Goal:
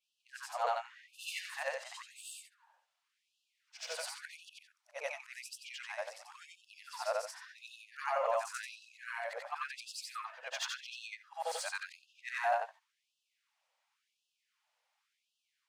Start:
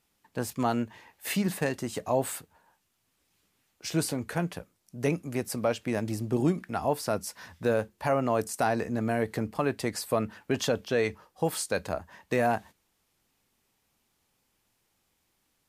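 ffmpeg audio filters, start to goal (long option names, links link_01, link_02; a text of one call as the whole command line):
ffmpeg -i in.wav -af "afftfilt=real='re':imag='-im':win_size=8192:overlap=0.75,adynamicsmooth=sensitivity=6:basefreq=5700,afftfilt=real='re*gte(b*sr/1024,470*pow(2600/470,0.5+0.5*sin(2*PI*0.92*pts/sr)))':imag='im*gte(b*sr/1024,470*pow(2600/470,0.5+0.5*sin(2*PI*0.92*pts/sr)))':win_size=1024:overlap=0.75,volume=2dB" out.wav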